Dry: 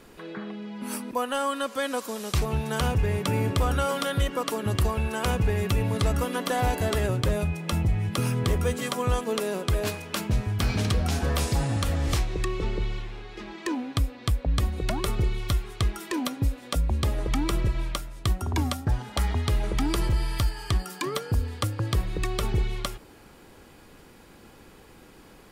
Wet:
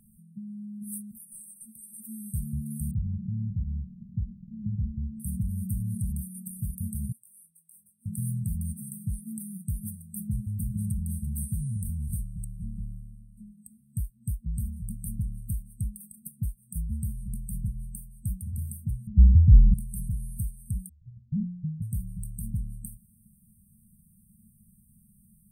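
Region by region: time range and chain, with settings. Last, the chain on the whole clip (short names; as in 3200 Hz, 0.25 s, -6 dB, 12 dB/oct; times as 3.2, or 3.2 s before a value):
2.91–5.2 delta modulation 16 kbps, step -25.5 dBFS + doubler 30 ms -10.5 dB
7.12–8.06 HPF 1500 Hz + compressor 2.5:1, threshold -38 dBFS + detuned doubles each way 11 cents
19.07–19.74 LPF 2100 Hz + tilt -4.5 dB/oct
20.89–21.82 inverse Chebyshev low-pass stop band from 1100 Hz, stop band 80 dB + frequency shift -260 Hz + Doppler distortion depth 0.96 ms
whole clip: FFT band-reject 230–8200 Hz; low shelf 85 Hz -11 dB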